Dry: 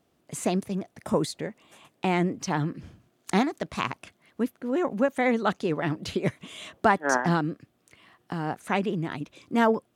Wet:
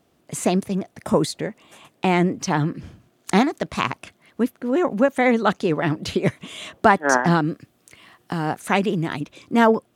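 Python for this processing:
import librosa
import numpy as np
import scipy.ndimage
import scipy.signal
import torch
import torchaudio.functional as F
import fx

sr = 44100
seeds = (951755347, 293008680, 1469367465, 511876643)

y = fx.high_shelf(x, sr, hz=4200.0, db=6.0, at=(7.47, 9.21))
y = F.gain(torch.from_numpy(y), 6.0).numpy()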